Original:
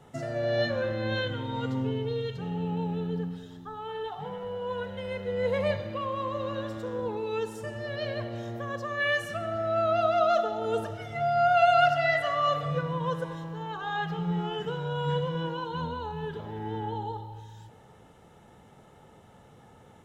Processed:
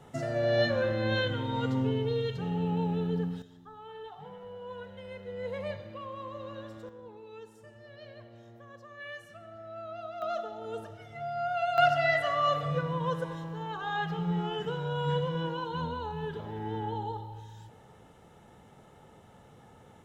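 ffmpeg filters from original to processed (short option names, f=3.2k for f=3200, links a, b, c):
-af "asetnsamples=n=441:p=0,asendcmd='3.42 volume volume -9dB;6.89 volume volume -16dB;10.22 volume volume -9.5dB;11.78 volume volume -1dB',volume=1dB"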